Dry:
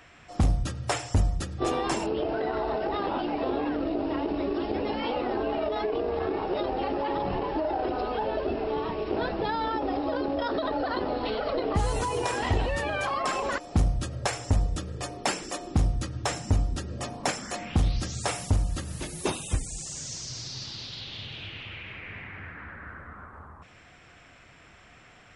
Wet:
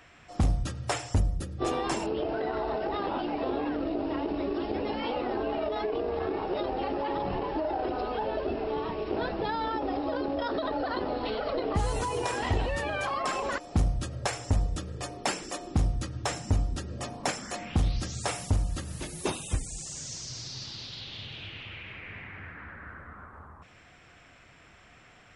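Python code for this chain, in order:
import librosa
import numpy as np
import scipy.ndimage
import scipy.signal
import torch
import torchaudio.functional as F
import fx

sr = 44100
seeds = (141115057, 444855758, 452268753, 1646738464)

y = fx.spec_box(x, sr, start_s=1.19, length_s=0.41, low_hz=620.0, high_hz=8500.0, gain_db=-6)
y = y * librosa.db_to_amplitude(-2.0)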